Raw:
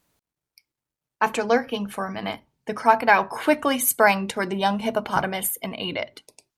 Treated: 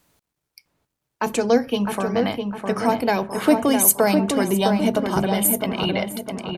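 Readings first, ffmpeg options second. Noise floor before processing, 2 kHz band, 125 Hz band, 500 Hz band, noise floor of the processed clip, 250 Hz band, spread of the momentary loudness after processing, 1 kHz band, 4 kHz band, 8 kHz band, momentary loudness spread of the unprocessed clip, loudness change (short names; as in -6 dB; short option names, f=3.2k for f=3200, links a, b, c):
under -85 dBFS, -5.0 dB, +7.5 dB, +3.5 dB, -81 dBFS, +8.0 dB, 10 LU, -3.0 dB, +2.5 dB, +6.5 dB, 13 LU, +2.5 dB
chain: -filter_complex "[0:a]acrossover=split=530|4000[a][b][c];[b]acompressor=threshold=-34dB:ratio=6[d];[a][d][c]amix=inputs=3:normalize=0,asplit=2[e][f];[f]adelay=657,lowpass=f=2k:p=1,volume=-4.5dB,asplit=2[g][h];[h]adelay=657,lowpass=f=2k:p=1,volume=0.47,asplit=2[i][j];[j]adelay=657,lowpass=f=2k:p=1,volume=0.47,asplit=2[k][l];[l]adelay=657,lowpass=f=2k:p=1,volume=0.47,asplit=2[m][n];[n]adelay=657,lowpass=f=2k:p=1,volume=0.47,asplit=2[o][p];[p]adelay=657,lowpass=f=2k:p=1,volume=0.47[q];[e][g][i][k][m][o][q]amix=inputs=7:normalize=0,volume=6.5dB"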